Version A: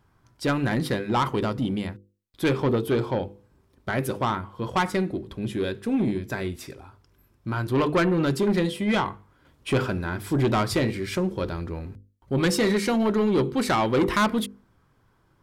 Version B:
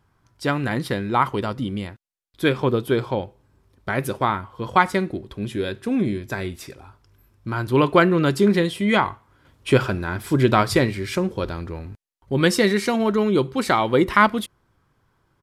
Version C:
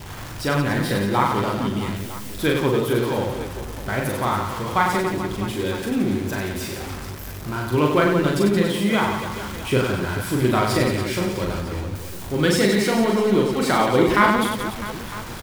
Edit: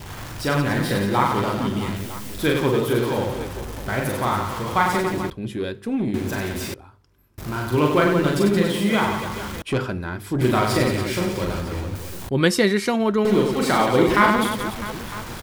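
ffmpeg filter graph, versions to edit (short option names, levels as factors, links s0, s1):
-filter_complex "[0:a]asplit=3[s0][s1][s2];[2:a]asplit=5[s3][s4][s5][s6][s7];[s3]atrim=end=5.302[s8];[s0]atrim=start=5.298:end=6.142[s9];[s4]atrim=start=6.138:end=6.742[s10];[s1]atrim=start=6.738:end=7.382[s11];[s5]atrim=start=7.378:end=9.622[s12];[s2]atrim=start=9.618:end=10.412[s13];[s6]atrim=start=10.408:end=12.292[s14];[1:a]atrim=start=12.288:end=13.252[s15];[s7]atrim=start=13.248[s16];[s8][s9]acrossfade=d=0.004:c1=hsin:c2=hsin[s17];[s17][s10]acrossfade=d=0.004:c1=hsin:c2=hsin[s18];[s18][s11]acrossfade=d=0.004:c1=hsin:c2=hsin[s19];[s19][s12]acrossfade=d=0.004:c1=hsin:c2=hsin[s20];[s20][s13]acrossfade=d=0.004:c1=hsin:c2=hsin[s21];[s21][s14]acrossfade=d=0.004:c1=hsin:c2=hsin[s22];[s22][s15]acrossfade=d=0.004:c1=hsin:c2=hsin[s23];[s23][s16]acrossfade=d=0.004:c1=hsin:c2=hsin"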